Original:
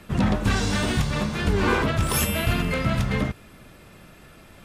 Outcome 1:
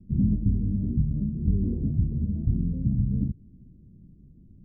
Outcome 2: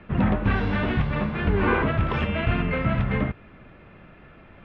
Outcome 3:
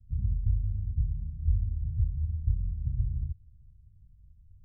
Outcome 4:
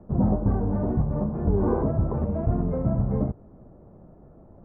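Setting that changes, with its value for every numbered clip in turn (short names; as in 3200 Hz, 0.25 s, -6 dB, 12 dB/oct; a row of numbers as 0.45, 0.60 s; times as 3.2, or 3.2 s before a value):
inverse Chebyshev low-pass, stop band from: 1500, 12000, 570, 4700 Hz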